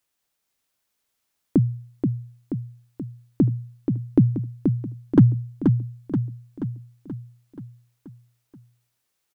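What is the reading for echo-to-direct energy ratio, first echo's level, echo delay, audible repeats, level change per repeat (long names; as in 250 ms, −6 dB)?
−3.5 dB, −5.0 dB, 480 ms, 6, −5.0 dB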